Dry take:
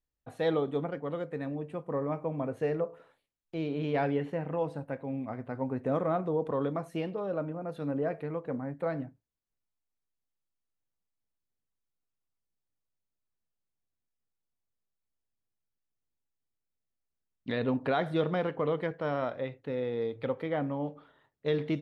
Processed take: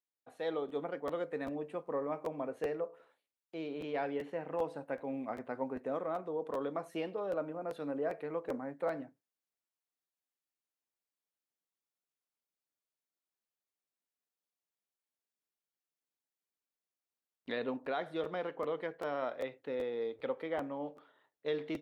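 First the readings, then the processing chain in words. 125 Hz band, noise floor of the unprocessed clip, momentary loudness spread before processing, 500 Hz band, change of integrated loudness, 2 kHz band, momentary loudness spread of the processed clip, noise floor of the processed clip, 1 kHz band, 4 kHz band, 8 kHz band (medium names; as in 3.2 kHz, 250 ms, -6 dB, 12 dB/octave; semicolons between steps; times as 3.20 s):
-16.5 dB, -85 dBFS, 8 LU, -4.5 dB, -5.5 dB, -4.5 dB, 4 LU, under -85 dBFS, -4.5 dB, -4.5 dB, no reading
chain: high-pass 310 Hz 12 dB/octave; gain riding within 4 dB 0.5 s; crackling interface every 0.39 s, samples 512, repeat, from 0.68 s; trim -3.5 dB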